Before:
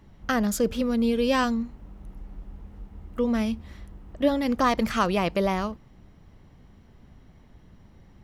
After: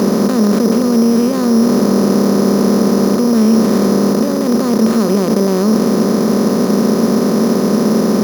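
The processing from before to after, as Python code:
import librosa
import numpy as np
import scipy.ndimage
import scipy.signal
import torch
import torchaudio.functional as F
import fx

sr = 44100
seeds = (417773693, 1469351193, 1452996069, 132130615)

p1 = fx.bin_compress(x, sr, power=0.2)
p2 = scipy.signal.sosfilt(scipy.signal.butter(2, 91.0, 'highpass', fs=sr, output='sos'), p1)
p3 = fx.bass_treble(p2, sr, bass_db=2, treble_db=-14)
p4 = fx.over_compress(p3, sr, threshold_db=-20.0, ratio=-0.5)
p5 = p3 + (p4 * librosa.db_to_amplitude(2.0))
p6 = fx.small_body(p5, sr, hz=(220.0, 370.0), ring_ms=45, db=18)
p7 = np.repeat(p6[::8], 8)[:len(p6)]
y = p7 * librosa.db_to_amplitude(-11.5)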